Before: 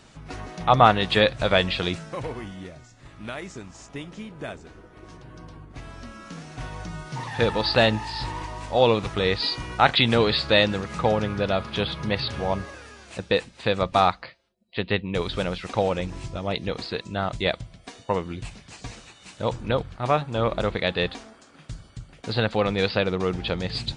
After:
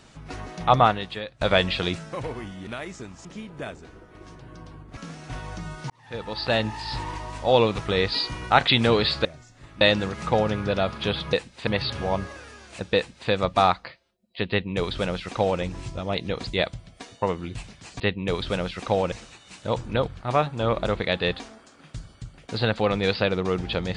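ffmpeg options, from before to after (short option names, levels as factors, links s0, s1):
-filter_complex "[0:a]asplit=13[s0][s1][s2][s3][s4][s5][s6][s7][s8][s9][s10][s11][s12];[s0]atrim=end=1.41,asetpts=PTS-STARTPTS,afade=t=out:st=0.73:d=0.68:c=qua:silence=0.1[s13];[s1]atrim=start=1.41:end=2.672,asetpts=PTS-STARTPTS,afade=t=in:d=0.004:c=hsin:silence=0.1[s14];[s2]atrim=start=3.228:end=3.812[s15];[s3]atrim=start=4.068:end=5.792[s16];[s4]atrim=start=6.248:end=7.18,asetpts=PTS-STARTPTS,afade=t=out:st=0.928:d=0.004:c=hsin[s17];[s5]atrim=start=7.18:end=10.532,asetpts=PTS-STARTPTS,afade=t=in:d=1.07[s18];[s6]atrim=start=2.668:end=3.232[s19];[s7]atrim=start=10.528:end=12.052[s20];[s8]atrim=start=13.338:end=13.682[s21];[s9]atrim=start=12.048:end=16.852[s22];[s10]atrim=start=17.338:end=18.872[s23];[s11]atrim=start=14.868:end=15.992[s24];[s12]atrim=start=18.868[s25];[s13][s14]concat=n=2:v=0:a=1[s26];[s26][s15]acrossfade=d=0.004:c1=hsin:c2=hsin[s27];[s27][s16]acrossfade=d=0.004:c1=hsin:c2=hsin[s28];[s17][s18]concat=n=2:v=0:a=1[s29];[s28][s29]acrossfade=d=0.004:c1=hsin:c2=hsin[s30];[s30][s19]acrossfade=d=0.004:c1=hsin:c2=hsin[s31];[s31][s20]acrossfade=d=0.004:c1=hsin:c2=hsin[s32];[s32][s21]acrossfade=d=0.004:c1=hsin:c2=hsin[s33];[s33][s22]acrossfade=d=0.004:c1=hsin:c2=hsin[s34];[s34][s23]acrossfade=d=0.004:c1=hsin:c2=hsin[s35];[s35][s24]acrossfade=d=0.004:c1=hsin:c2=hsin[s36];[s36][s25]acrossfade=d=0.004:c1=hsin:c2=hsin"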